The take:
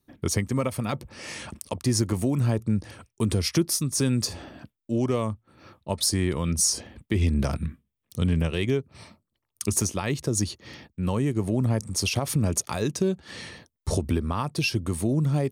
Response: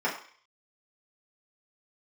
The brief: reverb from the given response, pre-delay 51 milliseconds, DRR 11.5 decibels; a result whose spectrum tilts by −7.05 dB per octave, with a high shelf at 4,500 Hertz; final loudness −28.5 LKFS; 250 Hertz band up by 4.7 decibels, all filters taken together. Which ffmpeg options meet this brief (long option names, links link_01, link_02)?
-filter_complex "[0:a]equalizer=frequency=250:width_type=o:gain=6,highshelf=frequency=4500:gain=-6,asplit=2[link_01][link_02];[1:a]atrim=start_sample=2205,adelay=51[link_03];[link_02][link_03]afir=irnorm=-1:irlink=0,volume=-23dB[link_04];[link_01][link_04]amix=inputs=2:normalize=0,volume=-4dB"